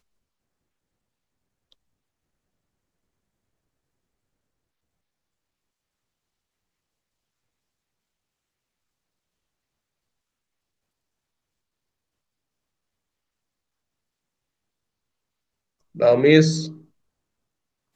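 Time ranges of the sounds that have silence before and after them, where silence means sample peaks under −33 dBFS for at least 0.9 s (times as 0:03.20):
0:15.97–0:16.72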